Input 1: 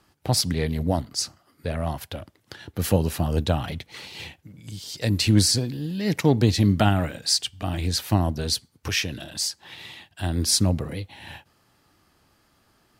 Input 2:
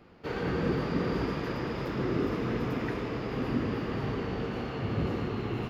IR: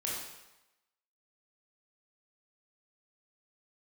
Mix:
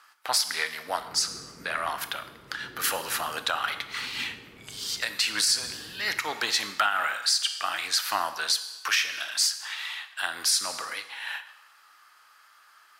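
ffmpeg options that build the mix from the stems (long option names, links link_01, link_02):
-filter_complex "[0:a]highpass=frequency=1300:width_type=q:width=2.7,volume=2.5dB,asplit=2[link_01][link_02];[link_02]volume=-11dB[link_03];[1:a]adelay=650,volume=-19.5dB[link_04];[2:a]atrim=start_sample=2205[link_05];[link_03][link_05]afir=irnorm=-1:irlink=0[link_06];[link_01][link_04][link_06]amix=inputs=3:normalize=0,alimiter=limit=-12.5dB:level=0:latency=1:release=208"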